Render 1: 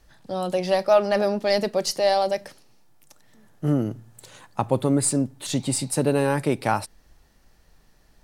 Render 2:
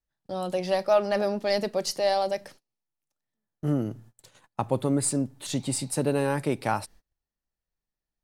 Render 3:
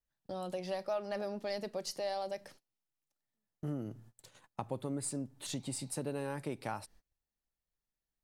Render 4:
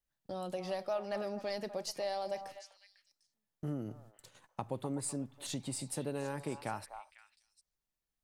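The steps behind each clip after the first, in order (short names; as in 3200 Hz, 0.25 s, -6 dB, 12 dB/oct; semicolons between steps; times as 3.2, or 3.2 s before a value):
gate -45 dBFS, range -28 dB; gain -4 dB
compressor 2:1, threshold -37 dBFS, peak gain reduction 11.5 dB; gain -4 dB
delay with a stepping band-pass 0.25 s, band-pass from 900 Hz, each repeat 1.4 oct, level -7 dB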